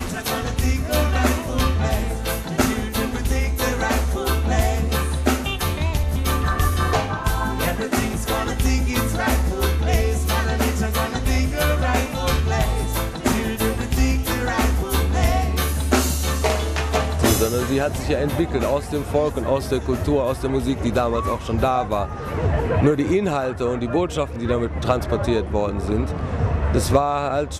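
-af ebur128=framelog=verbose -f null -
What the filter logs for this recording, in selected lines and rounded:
Integrated loudness:
  I:         -21.6 LUFS
  Threshold: -31.6 LUFS
Loudness range:
  LRA:         1.3 LU
  Threshold: -41.6 LUFS
  LRA low:   -22.1 LUFS
  LRA high:  -20.8 LUFS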